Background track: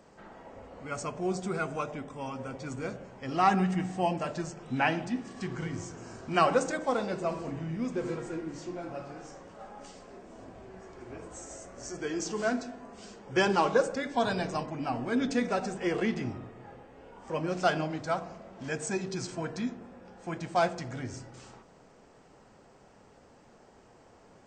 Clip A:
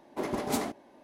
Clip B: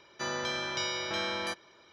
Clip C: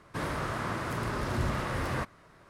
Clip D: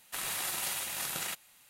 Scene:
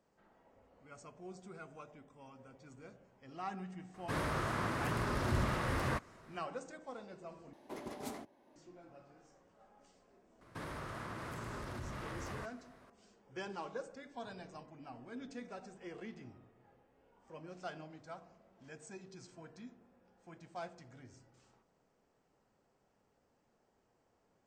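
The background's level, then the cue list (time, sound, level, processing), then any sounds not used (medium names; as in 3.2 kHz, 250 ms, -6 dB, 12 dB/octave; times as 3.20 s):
background track -18.5 dB
3.94 s: add C -3 dB
7.53 s: replace with A -13.5 dB + three bands compressed up and down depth 40%
10.41 s: add C -6 dB + compression, threshold -34 dBFS
not used: B, D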